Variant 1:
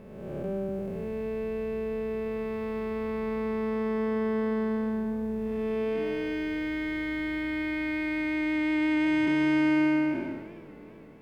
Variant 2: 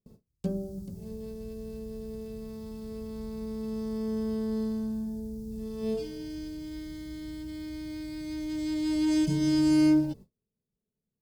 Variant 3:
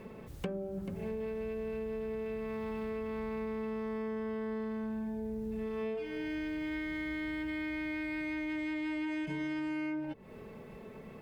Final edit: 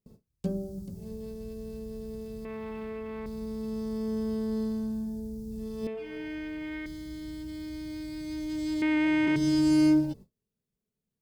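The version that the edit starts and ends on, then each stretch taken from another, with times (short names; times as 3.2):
2
2.45–3.26 from 3
5.87–6.86 from 3
8.82–9.36 from 1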